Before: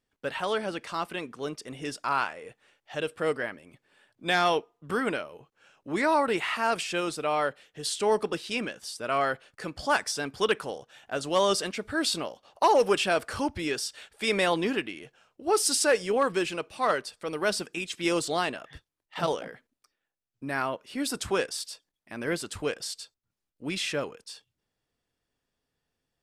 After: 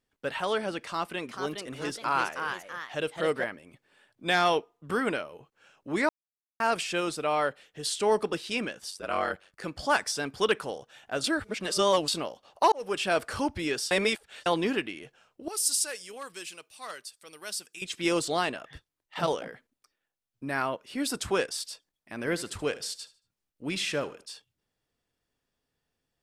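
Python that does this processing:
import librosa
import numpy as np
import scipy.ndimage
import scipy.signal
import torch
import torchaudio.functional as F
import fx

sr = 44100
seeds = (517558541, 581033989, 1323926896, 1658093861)

y = fx.echo_pitch(x, sr, ms=450, semitones=2, count=2, db_per_echo=-6.0, at=(0.82, 3.44))
y = fx.ring_mod(y, sr, carrier_hz=48.0, at=(8.9, 9.64))
y = fx.pre_emphasis(y, sr, coefficient=0.9, at=(15.48, 17.82))
y = fx.echo_feedback(y, sr, ms=75, feedback_pct=31, wet_db=-17.5, at=(22.17, 24.25), fade=0.02)
y = fx.edit(y, sr, fx.silence(start_s=6.09, length_s=0.51),
    fx.reverse_span(start_s=11.24, length_s=0.84),
    fx.fade_in_span(start_s=12.72, length_s=0.44),
    fx.reverse_span(start_s=13.91, length_s=0.55), tone=tone)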